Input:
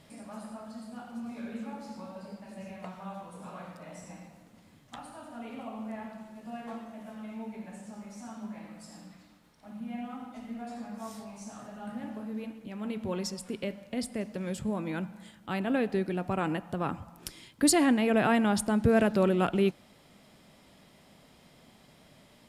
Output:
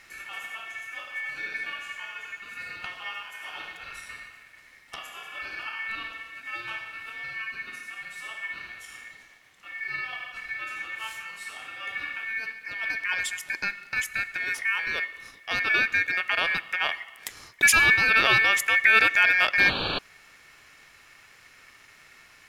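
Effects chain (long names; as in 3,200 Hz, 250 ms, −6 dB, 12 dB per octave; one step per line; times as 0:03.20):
sound drawn into the spectrogram noise, 0:19.59–0:19.99, 230–2,600 Hz −33 dBFS
ring modulation 2,000 Hz
level +7.5 dB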